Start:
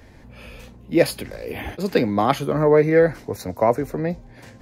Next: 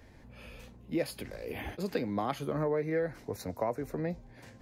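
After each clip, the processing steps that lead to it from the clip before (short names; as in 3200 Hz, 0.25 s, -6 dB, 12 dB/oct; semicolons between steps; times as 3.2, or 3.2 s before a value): compressor 3:1, threshold -21 dBFS, peak gain reduction 9 dB; gain -8.5 dB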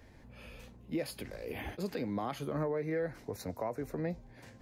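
limiter -24.5 dBFS, peak gain reduction 7 dB; gain -1.5 dB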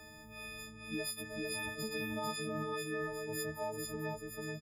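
frequency quantiser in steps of 6 st; echo 0.446 s -3 dB; three-band squash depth 40%; gain -6 dB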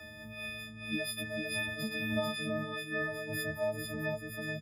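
reverb, pre-delay 3 ms, DRR 6.5 dB; noise-modulated level, depth 60%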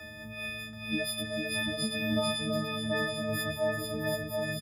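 echo 0.731 s -3.5 dB; gain +3.5 dB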